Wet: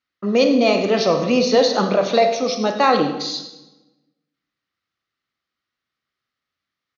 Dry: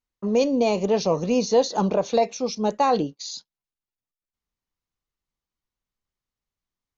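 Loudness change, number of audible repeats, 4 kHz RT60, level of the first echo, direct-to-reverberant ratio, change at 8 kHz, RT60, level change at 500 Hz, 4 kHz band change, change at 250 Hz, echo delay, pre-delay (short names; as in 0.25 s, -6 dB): +5.0 dB, 1, 0.85 s, -15.0 dB, 5.5 dB, n/a, 1.1 s, +5.0 dB, +9.5 dB, +4.5 dB, 0.101 s, 29 ms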